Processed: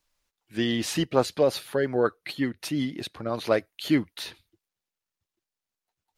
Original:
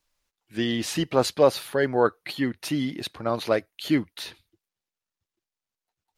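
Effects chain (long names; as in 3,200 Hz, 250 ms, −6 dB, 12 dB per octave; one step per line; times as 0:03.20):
0:01.05–0:03.44: rotating-speaker cabinet horn 5.5 Hz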